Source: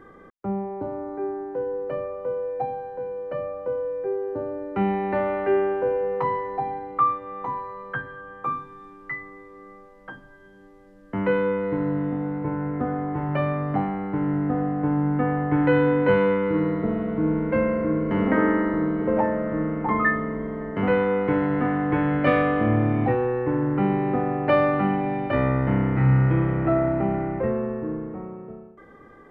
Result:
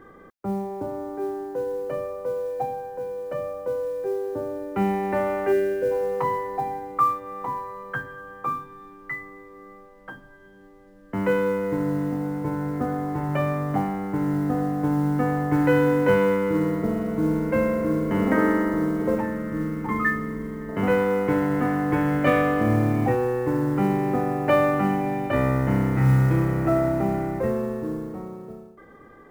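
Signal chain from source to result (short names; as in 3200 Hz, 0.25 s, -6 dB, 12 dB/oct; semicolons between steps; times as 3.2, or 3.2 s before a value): 5.52–5.91 spectral gain 660–1400 Hz -17 dB; 19.15–20.69 bell 690 Hz -14.5 dB 0.79 oct; modulation noise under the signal 31 dB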